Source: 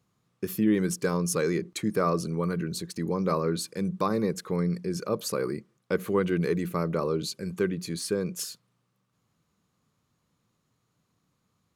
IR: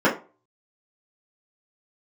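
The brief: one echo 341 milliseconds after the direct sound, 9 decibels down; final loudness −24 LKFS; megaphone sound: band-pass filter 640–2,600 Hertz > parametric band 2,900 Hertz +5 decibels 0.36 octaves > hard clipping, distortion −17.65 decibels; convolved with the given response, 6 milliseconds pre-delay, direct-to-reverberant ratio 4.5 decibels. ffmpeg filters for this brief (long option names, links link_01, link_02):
-filter_complex "[0:a]aecho=1:1:341:0.355,asplit=2[link_01][link_02];[1:a]atrim=start_sample=2205,adelay=6[link_03];[link_02][link_03]afir=irnorm=-1:irlink=0,volume=-24.5dB[link_04];[link_01][link_04]amix=inputs=2:normalize=0,highpass=640,lowpass=2600,equalizer=frequency=2900:width_type=o:width=0.36:gain=5,asoftclip=type=hard:threshold=-23dB,volume=10.5dB"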